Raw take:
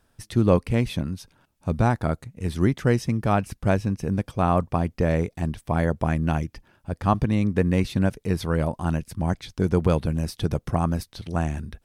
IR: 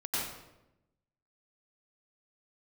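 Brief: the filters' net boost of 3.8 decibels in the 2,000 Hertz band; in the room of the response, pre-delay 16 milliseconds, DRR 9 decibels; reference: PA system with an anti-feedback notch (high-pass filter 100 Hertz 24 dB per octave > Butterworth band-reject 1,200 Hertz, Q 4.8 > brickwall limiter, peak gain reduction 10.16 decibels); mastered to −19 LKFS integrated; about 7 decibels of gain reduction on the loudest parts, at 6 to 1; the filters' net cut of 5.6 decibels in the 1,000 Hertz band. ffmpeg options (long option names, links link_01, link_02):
-filter_complex "[0:a]equalizer=frequency=1000:width_type=o:gain=-8.5,equalizer=frequency=2000:width_type=o:gain=8,acompressor=threshold=-22dB:ratio=6,asplit=2[link_01][link_02];[1:a]atrim=start_sample=2205,adelay=16[link_03];[link_02][link_03]afir=irnorm=-1:irlink=0,volume=-15dB[link_04];[link_01][link_04]amix=inputs=2:normalize=0,highpass=frequency=100:width=0.5412,highpass=frequency=100:width=1.3066,asuperstop=centerf=1200:order=8:qfactor=4.8,volume=14dB,alimiter=limit=-7.5dB:level=0:latency=1"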